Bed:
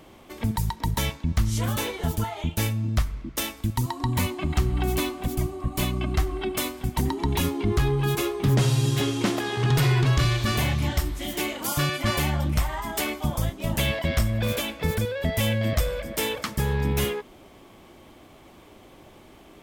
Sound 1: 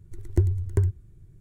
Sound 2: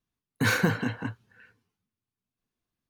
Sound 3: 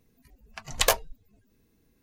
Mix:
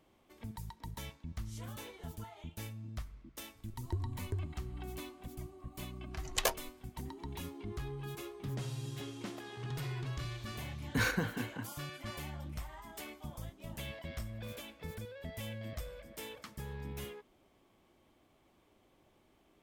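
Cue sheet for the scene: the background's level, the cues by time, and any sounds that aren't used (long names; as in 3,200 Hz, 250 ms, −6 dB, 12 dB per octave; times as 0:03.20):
bed −19 dB
0:03.55: mix in 1 −15.5 dB
0:05.57: mix in 3 −9.5 dB
0:10.54: mix in 2 −7 dB + sample-and-hold tremolo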